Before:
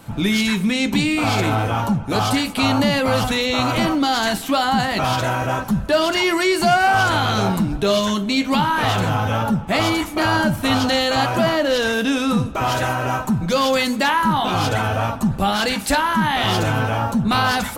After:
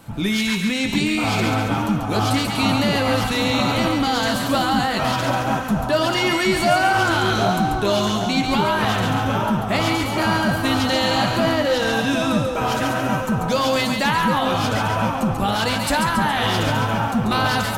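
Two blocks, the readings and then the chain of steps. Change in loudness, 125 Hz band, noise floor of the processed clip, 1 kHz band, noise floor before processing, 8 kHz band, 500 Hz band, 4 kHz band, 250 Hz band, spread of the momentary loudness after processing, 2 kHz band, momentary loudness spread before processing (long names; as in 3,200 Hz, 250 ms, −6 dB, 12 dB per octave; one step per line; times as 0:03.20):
−1.0 dB, −1.0 dB, −24 dBFS, −1.0 dB, −29 dBFS, −1.0 dB, −0.5 dB, −1.0 dB, −1.0 dB, 3 LU, −1.0 dB, 3 LU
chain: echo with a time of its own for lows and highs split 1,200 Hz, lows 763 ms, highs 139 ms, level −4.5 dB
level −2.5 dB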